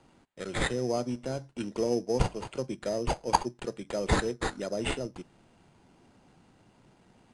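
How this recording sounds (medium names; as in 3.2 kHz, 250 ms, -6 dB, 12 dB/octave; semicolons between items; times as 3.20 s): aliases and images of a low sample rate 5.6 kHz, jitter 0%; AAC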